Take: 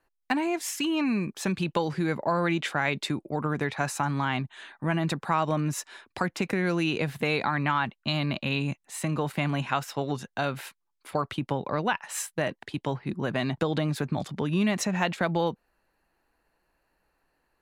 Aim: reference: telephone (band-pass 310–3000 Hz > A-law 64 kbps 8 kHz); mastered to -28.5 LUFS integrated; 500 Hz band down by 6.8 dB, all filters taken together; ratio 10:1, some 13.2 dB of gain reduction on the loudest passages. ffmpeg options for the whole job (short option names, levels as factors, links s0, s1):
-af "equalizer=f=500:t=o:g=-8,acompressor=threshold=0.0158:ratio=10,highpass=310,lowpass=3000,volume=5.96" -ar 8000 -c:a pcm_alaw